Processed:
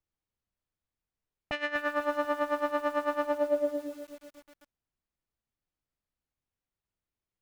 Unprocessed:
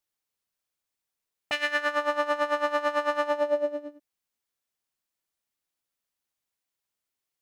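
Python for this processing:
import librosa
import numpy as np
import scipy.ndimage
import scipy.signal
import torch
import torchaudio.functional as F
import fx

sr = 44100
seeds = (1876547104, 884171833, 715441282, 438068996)

y = fx.riaa(x, sr, side='playback')
y = fx.echo_crushed(y, sr, ms=246, feedback_pct=55, bits=7, wet_db=-10.5)
y = y * librosa.db_to_amplitude(-3.5)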